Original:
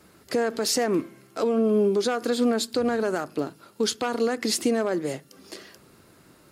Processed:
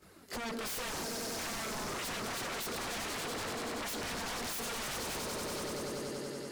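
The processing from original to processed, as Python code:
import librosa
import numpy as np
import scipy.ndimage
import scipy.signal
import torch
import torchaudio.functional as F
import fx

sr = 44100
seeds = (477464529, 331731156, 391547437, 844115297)

p1 = fx.over_compress(x, sr, threshold_db=-27.0, ratio=-1.0)
p2 = x + (p1 * librosa.db_to_amplitude(-1.0))
p3 = fx.chorus_voices(p2, sr, voices=2, hz=0.68, base_ms=20, depth_ms=2.5, mix_pct=70)
p4 = fx.echo_swell(p3, sr, ms=95, loudest=5, wet_db=-11)
p5 = 10.0 ** (-26.0 / 20.0) * (np.abs((p4 / 10.0 ** (-26.0 / 20.0) + 3.0) % 4.0 - 2.0) - 1.0)
y = p5 * librosa.db_to_amplitude(-7.5)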